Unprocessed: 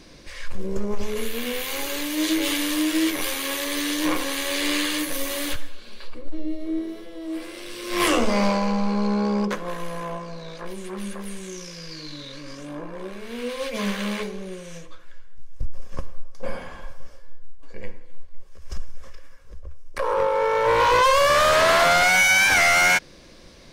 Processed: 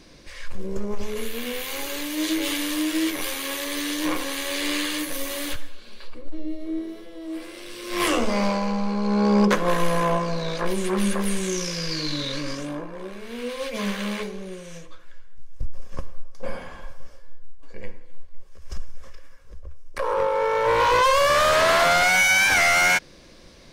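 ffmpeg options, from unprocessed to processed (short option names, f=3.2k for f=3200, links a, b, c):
-af "volume=9.5dB,afade=t=in:st=9.03:d=0.71:silence=0.266073,afade=t=out:st=12.39:d=0.48:silence=0.298538"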